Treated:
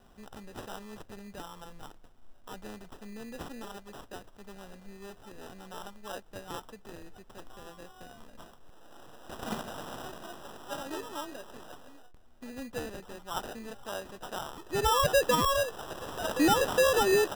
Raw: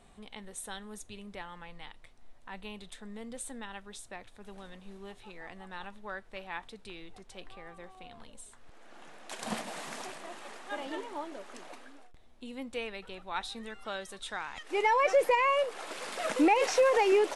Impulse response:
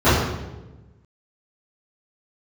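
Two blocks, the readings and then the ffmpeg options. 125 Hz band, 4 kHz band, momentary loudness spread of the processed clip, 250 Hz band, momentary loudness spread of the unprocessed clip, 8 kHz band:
+11.0 dB, +4.5 dB, 24 LU, +0.5 dB, 24 LU, +4.0 dB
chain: -af "acrusher=samples=20:mix=1:aa=0.000001"

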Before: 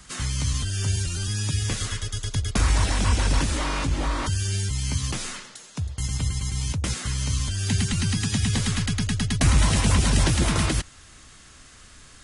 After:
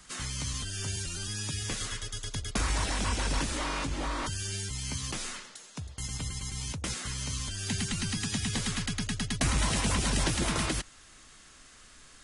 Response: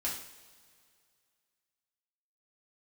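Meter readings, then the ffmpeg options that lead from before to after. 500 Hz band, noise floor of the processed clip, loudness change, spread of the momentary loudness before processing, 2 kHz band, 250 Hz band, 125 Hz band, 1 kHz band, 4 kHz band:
−5.0 dB, −54 dBFS, −7.0 dB, 9 LU, −4.5 dB, −7.0 dB, −11.0 dB, −4.5 dB, −4.5 dB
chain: -af "equalizer=frequency=83:width=0.75:gain=-8.5,volume=-4.5dB"

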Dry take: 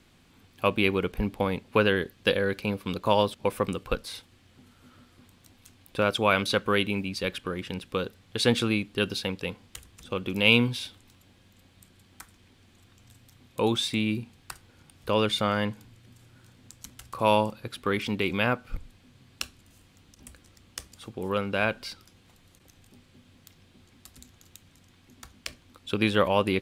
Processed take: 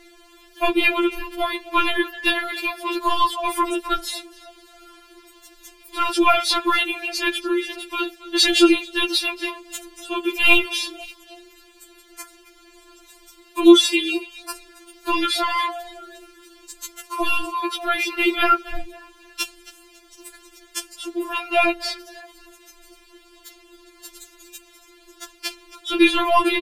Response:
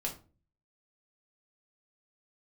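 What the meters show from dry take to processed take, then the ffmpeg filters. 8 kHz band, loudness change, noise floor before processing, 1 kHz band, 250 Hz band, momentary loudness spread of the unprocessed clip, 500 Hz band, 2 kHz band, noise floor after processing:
+11.0 dB, +6.5 dB, −60 dBFS, +8.5 dB, +7.5 dB, 19 LU, +3.0 dB, +7.5 dB, −52 dBFS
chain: -filter_complex "[0:a]asplit=4[link_01][link_02][link_03][link_04];[link_02]adelay=271,afreqshift=78,volume=-21dB[link_05];[link_03]adelay=542,afreqshift=156,volume=-30.1dB[link_06];[link_04]adelay=813,afreqshift=234,volume=-39.2dB[link_07];[link_01][link_05][link_06][link_07]amix=inputs=4:normalize=0,apsyclip=17dB,afftfilt=real='re*4*eq(mod(b,16),0)':imag='im*4*eq(mod(b,16),0)':win_size=2048:overlap=0.75,volume=-3.5dB"

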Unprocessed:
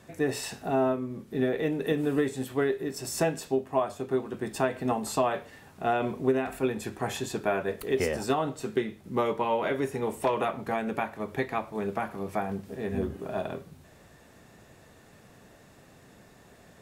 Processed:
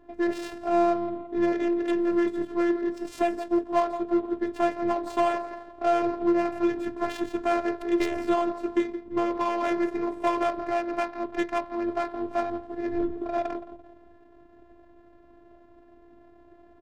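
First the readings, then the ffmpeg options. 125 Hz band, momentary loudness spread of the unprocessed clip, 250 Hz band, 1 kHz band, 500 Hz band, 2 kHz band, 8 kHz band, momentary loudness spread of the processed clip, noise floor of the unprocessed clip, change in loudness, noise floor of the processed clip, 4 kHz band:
−12.5 dB, 6 LU, +5.0 dB, +3.5 dB, +1.5 dB, −0.5 dB, below −10 dB, 6 LU, −55 dBFS, +2.5 dB, −54 dBFS, −2.5 dB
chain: -filter_complex "[0:a]aecho=1:1:170|340|510|680:0.211|0.0951|0.0428|0.0193,acrossover=split=140[link_01][link_02];[link_02]asoftclip=type=tanh:threshold=-22dB[link_03];[link_01][link_03]amix=inputs=2:normalize=0,afftfilt=real='hypot(re,im)*cos(PI*b)':imag='0':win_size=512:overlap=0.75,adynamicsmooth=sensitivity=7:basefreq=710,volume=7.5dB"

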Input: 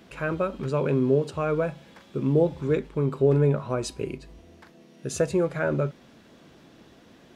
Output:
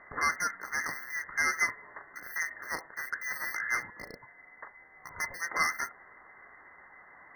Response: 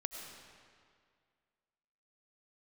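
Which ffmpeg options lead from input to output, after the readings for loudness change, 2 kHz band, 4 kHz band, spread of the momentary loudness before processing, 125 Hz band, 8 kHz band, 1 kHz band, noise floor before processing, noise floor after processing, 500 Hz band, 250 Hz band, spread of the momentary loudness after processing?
−6.5 dB, +8.0 dB, +0.5 dB, 12 LU, −31.0 dB, +2.5 dB, 0.0 dB, −54 dBFS, −56 dBFS, −26.0 dB, −25.5 dB, 19 LU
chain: -af "lowpass=frequency=2300:width_type=q:width=0.5098,lowpass=frequency=2300:width_type=q:width=0.6013,lowpass=frequency=2300:width_type=q:width=0.9,lowpass=frequency=2300:width_type=q:width=2.563,afreqshift=-2700,asoftclip=type=hard:threshold=-26.5dB,afftfilt=real='re*eq(mod(floor(b*sr/1024/2100),2),0)':imag='im*eq(mod(floor(b*sr/1024/2100),2),0)':win_size=1024:overlap=0.75,volume=7dB"

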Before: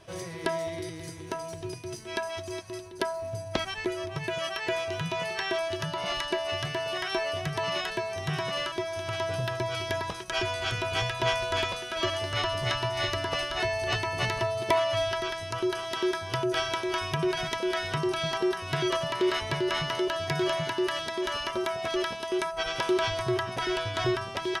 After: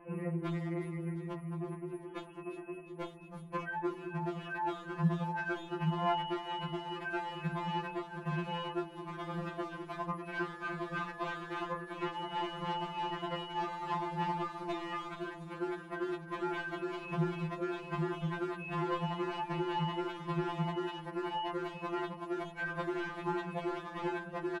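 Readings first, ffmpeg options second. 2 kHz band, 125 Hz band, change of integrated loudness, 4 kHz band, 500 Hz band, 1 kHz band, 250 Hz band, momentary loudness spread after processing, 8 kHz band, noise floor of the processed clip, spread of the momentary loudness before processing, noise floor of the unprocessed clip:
−9.0 dB, −3.5 dB, −8.0 dB, −15.5 dB, −10.5 dB, −4.5 dB, −3.0 dB, 6 LU, below −20 dB, −49 dBFS, 6 LU, −40 dBFS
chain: -filter_complex "[0:a]asuperstop=centerf=5300:order=20:qfactor=0.8,aemphasis=mode=reproduction:type=75fm,asoftclip=type=hard:threshold=-28dB,equalizer=frequency=125:width_type=o:width=1:gain=10,equalizer=frequency=250:width_type=o:width=1:gain=5,equalizer=frequency=500:width_type=o:width=1:gain=4,equalizer=frequency=1000:width_type=o:width=1:gain=12,equalizer=frequency=4000:width_type=o:width=1:gain=3,equalizer=frequency=8000:width_type=o:width=1:gain=8,aecho=1:1:356|712|1068|1424|1780:0.119|0.0701|0.0414|0.0244|0.0144,acrossover=split=3300[link_01][link_02];[link_02]acompressor=threshold=-54dB:ratio=4:attack=1:release=60[link_03];[link_01][link_03]amix=inputs=2:normalize=0,bandreject=frequency=169.9:width_type=h:width=4,bandreject=frequency=339.8:width_type=h:width=4,bandreject=frequency=509.7:width_type=h:width=4,bandreject=frequency=679.6:width_type=h:width=4,bandreject=frequency=849.5:width_type=h:width=4,bandreject=frequency=1019.4:width_type=h:width=4,bandreject=frequency=1189.3:width_type=h:width=4,bandreject=frequency=1359.2:width_type=h:width=4,bandreject=frequency=1529.1:width_type=h:width=4,bandreject=frequency=1699:width_type=h:width=4,bandreject=frequency=1868.9:width_type=h:width=4,bandreject=frequency=2038.8:width_type=h:width=4,bandreject=frequency=2208.7:width_type=h:width=4,bandreject=frequency=2378.6:width_type=h:width=4,bandreject=frequency=2548.5:width_type=h:width=4,bandreject=frequency=2718.4:width_type=h:width=4,bandreject=frequency=2888.3:width_type=h:width=4,bandreject=frequency=3058.2:width_type=h:width=4,bandreject=frequency=3228.1:width_type=h:width=4,bandreject=frequency=3398:width_type=h:width=4,bandreject=frequency=3567.9:width_type=h:width=4,bandreject=frequency=3737.8:width_type=h:width=4,bandreject=frequency=3907.7:width_type=h:width=4,bandreject=frequency=4077.6:width_type=h:width=4,bandreject=frequency=4247.5:width_type=h:width=4,bandreject=frequency=4417.4:width_type=h:width=4,bandreject=frequency=4587.3:width_type=h:width=4,bandreject=frequency=4757.2:width_type=h:width=4,bandreject=frequency=4927.1:width_type=h:width=4,bandreject=frequency=5097:width_type=h:width=4,bandreject=frequency=5266.9:width_type=h:width=4,bandreject=frequency=5436.8:width_type=h:width=4,bandreject=frequency=5606.7:width_type=h:width=4,bandreject=frequency=5776.6:width_type=h:width=4,afftfilt=real='re*2.83*eq(mod(b,8),0)':imag='im*2.83*eq(mod(b,8),0)':win_size=2048:overlap=0.75,volume=-4.5dB"

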